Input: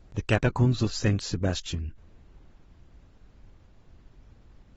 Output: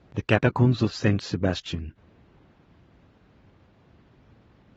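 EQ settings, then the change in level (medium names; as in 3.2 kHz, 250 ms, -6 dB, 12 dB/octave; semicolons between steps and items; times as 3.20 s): band-pass 110–3800 Hz; +4.0 dB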